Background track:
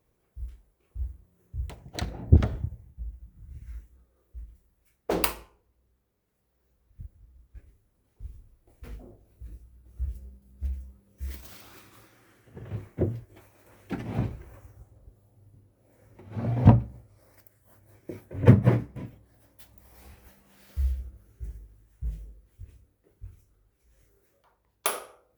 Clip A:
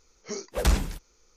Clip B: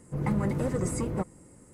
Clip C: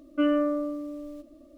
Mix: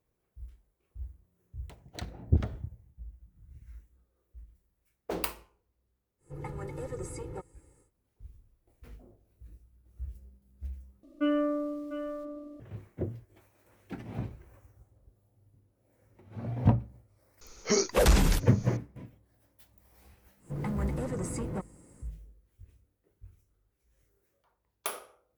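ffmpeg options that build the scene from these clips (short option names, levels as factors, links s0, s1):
-filter_complex "[2:a]asplit=2[s0][s1];[0:a]volume=0.422[s2];[s0]aecho=1:1:2.3:0.89[s3];[3:a]asplit=2[s4][s5];[s5]adelay=699.7,volume=0.398,highshelf=f=4000:g=-15.7[s6];[s4][s6]amix=inputs=2:normalize=0[s7];[1:a]alimiter=level_in=17.8:limit=0.891:release=50:level=0:latency=1[s8];[s1]asoftclip=type=tanh:threshold=0.0631[s9];[s2]asplit=2[s10][s11];[s10]atrim=end=11.034[s12];[s7]atrim=end=1.57,asetpts=PTS-STARTPTS,volume=0.631[s13];[s11]atrim=start=12.596[s14];[s3]atrim=end=1.73,asetpts=PTS-STARTPTS,volume=0.266,afade=t=in:d=0.1,afade=t=out:st=1.63:d=0.1,adelay=272538S[s15];[s8]atrim=end=1.36,asetpts=PTS-STARTPTS,volume=0.211,afade=t=in:d=0.004:c=hsin,afade=t=out:st=1.356:d=0.004:c=hsin,adelay=17410[s16];[s9]atrim=end=1.73,asetpts=PTS-STARTPTS,volume=0.708,afade=t=in:d=0.1,afade=t=out:st=1.63:d=0.1,adelay=20380[s17];[s12][s13]acrossfade=d=0.004:c1=hsin:c2=hsin[s18];[s18][s14]acrossfade=d=0.004:c1=hsin:c2=hsin[s19];[s19][s15][s16][s17]amix=inputs=4:normalize=0"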